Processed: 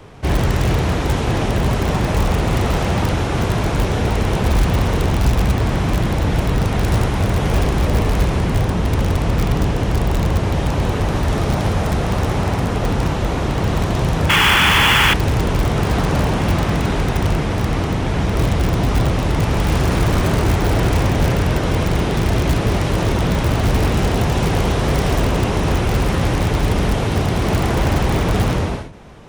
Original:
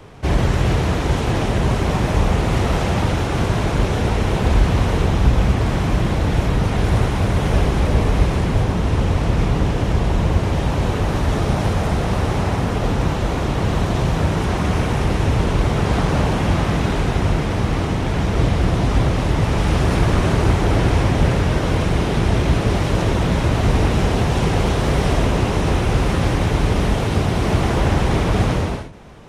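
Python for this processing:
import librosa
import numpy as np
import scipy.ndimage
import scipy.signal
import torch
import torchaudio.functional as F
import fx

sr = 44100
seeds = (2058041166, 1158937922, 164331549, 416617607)

p1 = fx.spec_paint(x, sr, seeds[0], shape='noise', start_s=14.29, length_s=0.85, low_hz=790.0, high_hz=3500.0, level_db=-13.0)
p2 = (np.mod(10.0 ** (9.5 / 20.0) * p1 + 1.0, 2.0) - 1.0) / 10.0 ** (9.5 / 20.0)
p3 = p1 + F.gain(torch.from_numpy(p2), -10.0).numpy()
y = F.gain(torch.from_numpy(p3), -1.5).numpy()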